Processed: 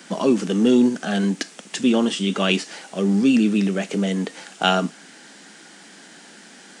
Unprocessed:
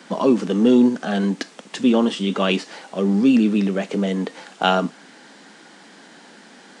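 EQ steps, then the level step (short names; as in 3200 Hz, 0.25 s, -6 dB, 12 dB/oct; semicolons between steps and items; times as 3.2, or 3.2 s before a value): graphic EQ 125/250/500/1000/2000/4000 Hz -7/-7/-8/-10/-4/-6 dB; +8.5 dB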